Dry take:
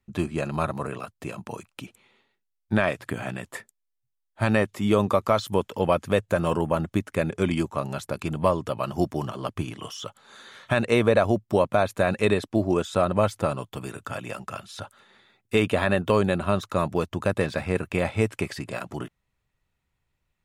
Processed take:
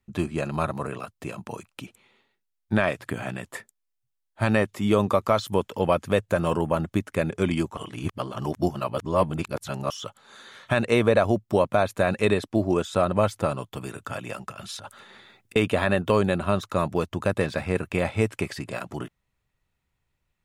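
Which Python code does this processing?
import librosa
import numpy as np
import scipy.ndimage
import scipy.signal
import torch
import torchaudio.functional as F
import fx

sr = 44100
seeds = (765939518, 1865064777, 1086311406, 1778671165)

y = fx.over_compress(x, sr, threshold_db=-43.0, ratio=-1.0, at=(14.5, 15.56))
y = fx.edit(y, sr, fx.reverse_span(start_s=7.77, length_s=2.13), tone=tone)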